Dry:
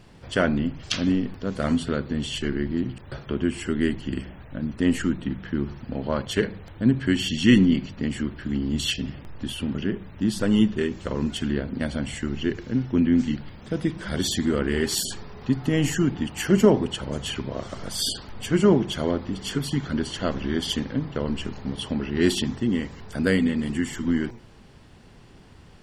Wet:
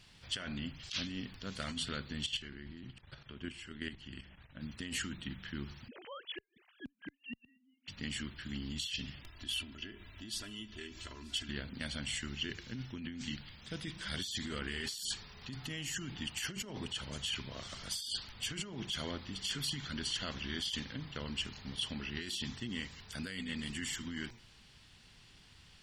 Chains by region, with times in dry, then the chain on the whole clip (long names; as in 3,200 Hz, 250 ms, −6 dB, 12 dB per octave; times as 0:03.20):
0:02.26–0:04.61: low-pass filter 3,300 Hz 6 dB per octave + output level in coarse steps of 11 dB
0:05.88–0:07.88: three sine waves on the formant tracks + gate with flip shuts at −17 dBFS, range −41 dB + multiband upward and downward compressor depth 40%
0:09.23–0:11.49: downward compressor 3 to 1, threshold −33 dBFS + comb filter 3 ms, depth 74% + single-tap delay 930 ms −22 dB
whole clip: guitar amp tone stack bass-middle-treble 5-5-5; compressor whose output falls as the input rises −41 dBFS, ratio −1; parametric band 3,600 Hz +6.5 dB 1.5 octaves